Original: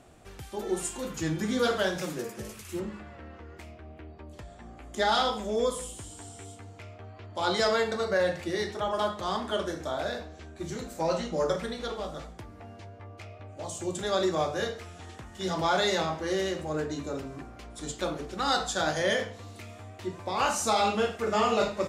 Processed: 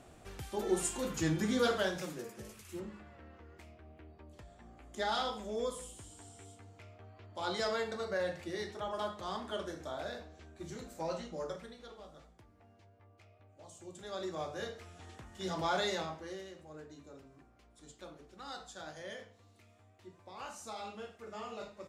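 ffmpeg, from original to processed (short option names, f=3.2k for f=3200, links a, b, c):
-af "volume=8.5dB,afade=t=out:st=1.23:d=0.97:silence=0.421697,afade=t=out:st=10.96:d=0.82:silence=0.398107,afade=t=in:st=13.94:d=1.19:silence=0.316228,afade=t=out:st=15.78:d=0.67:silence=0.251189"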